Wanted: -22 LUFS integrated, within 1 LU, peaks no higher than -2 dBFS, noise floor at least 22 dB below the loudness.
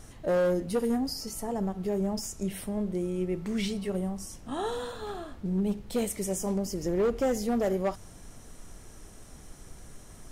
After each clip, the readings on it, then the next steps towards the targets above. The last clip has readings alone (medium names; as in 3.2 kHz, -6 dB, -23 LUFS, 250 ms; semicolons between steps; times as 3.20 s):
clipped samples 1.5%; clipping level -21.5 dBFS; noise floor -49 dBFS; noise floor target -53 dBFS; loudness -30.5 LUFS; peak level -21.5 dBFS; loudness target -22.0 LUFS
-> clip repair -21.5 dBFS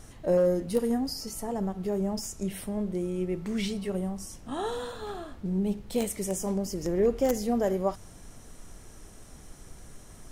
clipped samples 0.0%; noise floor -49 dBFS; noise floor target -52 dBFS
-> noise print and reduce 6 dB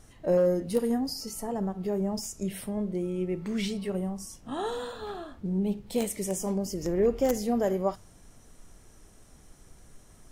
noise floor -55 dBFS; loudness -30.0 LUFS; peak level -12.5 dBFS; loudness target -22.0 LUFS
-> trim +8 dB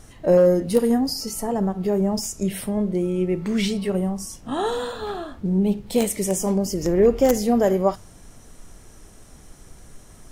loudness -22.0 LUFS; peak level -4.5 dBFS; noise floor -47 dBFS